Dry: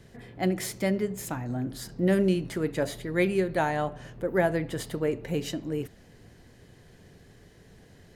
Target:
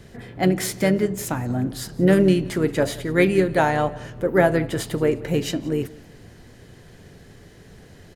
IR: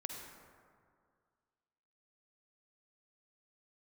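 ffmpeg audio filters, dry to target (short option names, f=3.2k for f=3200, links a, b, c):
-filter_complex "[0:a]aecho=1:1:176|352:0.0794|0.0262,asplit=2[a][b];[b]asetrate=35002,aresample=44100,atempo=1.25992,volume=-12dB[c];[a][c]amix=inputs=2:normalize=0,volume=7dB"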